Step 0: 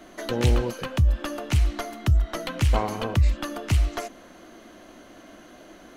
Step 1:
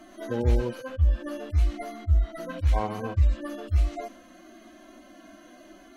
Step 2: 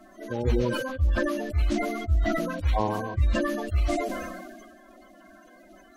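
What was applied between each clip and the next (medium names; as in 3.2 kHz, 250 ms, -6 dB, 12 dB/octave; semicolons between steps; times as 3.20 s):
harmonic-percussive separation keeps harmonic; trim -1 dB
coarse spectral quantiser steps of 30 dB; decay stretcher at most 32 dB/s; trim -2 dB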